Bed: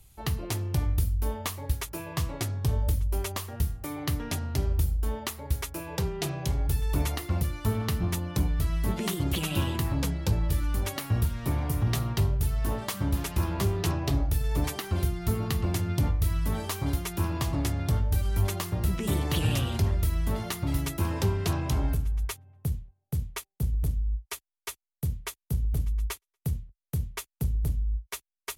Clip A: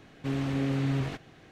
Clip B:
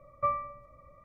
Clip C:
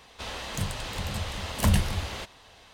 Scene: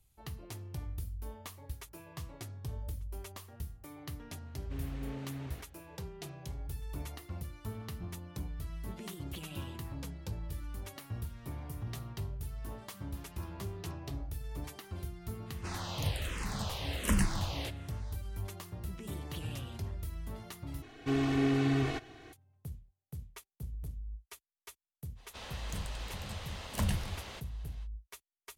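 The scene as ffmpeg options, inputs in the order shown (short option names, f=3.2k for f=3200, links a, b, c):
-filter_complex "[1:a]asplit=2[a][b];[3:a]asplit=2[c][d];[0:a]volume=-14dB[e];[c]asplit=2[f][g];[g]afreqshift=-1.3[h];[f][h]amix=inputs=2:normalize=1[i];[b]aecho=1:1:2.7:0.88[j];[e]asplit=2[k][l];[k]atrim=end=20.824[m];[j]atrim=end=1.51,asetpts=PTS-STARTPTS,volume=-1dB[n];[l]atrim=start=22.326[o];[a]atrim=end=1.51,asetpts=PTS-STARTPTS,volume=-13.5dB,afade=t=in:d=0.004:c=hsin,afade=t=out:st=1.506:d=0.004:c=hsin,adelay=4460[p];[i]atrim=end=2.73,asetpts=PTS-STARTPTS,volume=-2dB,afade=t=in:d=0.05,afade=t=out:st=2.68:d=0.05,adelay=15450[q];[d]atrim=end=2.73,asetpts=PTS-STARTPTS,volume=-9.5dB,afade=t=in:d=0.05,afade=t=out:st=2.68:d=0.05,adelay=25150[r];[m][n]acrossfade=d=0.004:c1=hsin:c2=hsin[s];[s][o]acrossfade=d=0.004:c1=hsin:c2=hsin[t];[t][p][q][r]amix=inputs=4:normalize=0"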